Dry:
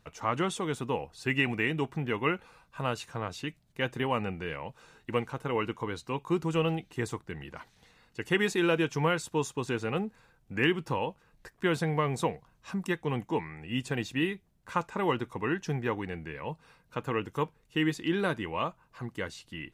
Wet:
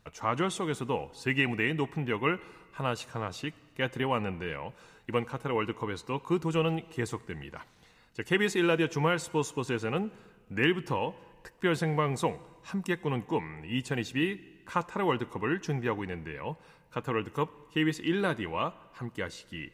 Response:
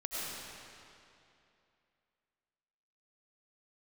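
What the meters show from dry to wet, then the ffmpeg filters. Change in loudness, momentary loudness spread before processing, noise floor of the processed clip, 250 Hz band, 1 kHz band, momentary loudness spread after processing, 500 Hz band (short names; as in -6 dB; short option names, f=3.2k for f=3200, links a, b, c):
+0.5 dB, 12 LU, -60 dBFS, +0.5 dB, +0.5 dB, 12 LU, +0.5 dB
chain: -filter_complex "[0:a]asplit=2[a][b];[1:a]atrim=start_sample=2205,asetrate=70560,aresample=44100[c];[b][c]afir=irnorm=-1:irlink=0,volume=-20dB[d];[a][d]amix=inputs=2:normalize=0"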